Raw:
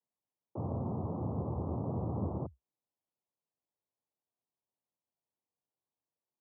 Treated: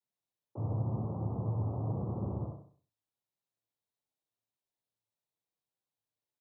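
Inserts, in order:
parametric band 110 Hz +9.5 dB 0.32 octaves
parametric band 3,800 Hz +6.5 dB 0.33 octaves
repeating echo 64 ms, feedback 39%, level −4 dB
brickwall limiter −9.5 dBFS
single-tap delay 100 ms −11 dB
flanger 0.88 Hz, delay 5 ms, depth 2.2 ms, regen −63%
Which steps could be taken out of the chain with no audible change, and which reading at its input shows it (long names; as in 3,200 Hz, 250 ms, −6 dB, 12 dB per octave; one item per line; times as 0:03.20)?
parametric band 3,800 Hz: nothing at its input above 910 Hz
brickwall limiter −9.5 dBFS: peak of its input −19.0 dBFS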